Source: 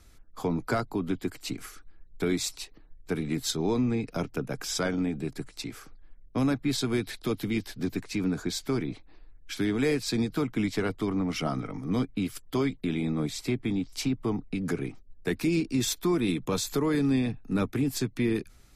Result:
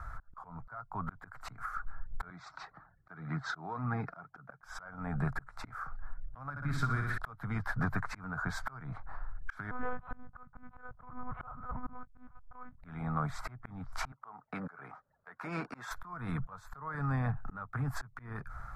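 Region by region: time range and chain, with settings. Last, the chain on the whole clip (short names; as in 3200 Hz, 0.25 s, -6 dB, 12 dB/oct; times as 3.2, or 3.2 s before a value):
2.3–4.63 flange 1.9 Hz, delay 0.7 ms, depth 2.7 ms, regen +52% + speaker cabinet 160–5400 Hz, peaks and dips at 170 Hz +5 dB, 320 Hz +6 dB, 500 Hz -4 dB, 1000 Hz -4 dB, 2800 Hz -5 dB
6.5–7.18 bell 780 Hz -11.5 dB 1.3 oct + flutter echo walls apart 10.4 m, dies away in 0.65 s
9.71–12.78 median filter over 25 samples + monotone LPC vocoder at 8 kHz 250 Hz + upward expander, over -41 dBFS
14.12–15.91 HPF 380 Hz + high shelf 7800 Hz -11 dB
whole clip: EQ curve 140 Hz 0 dB, 340 Hz -22 dB, 680 Hz +3 dB, 1400 Hz +13 dB, 2700 Hz -22 dB; compressor 12:1, threshold -40 dBFS; auto swell 0.388 s; gain +12 dB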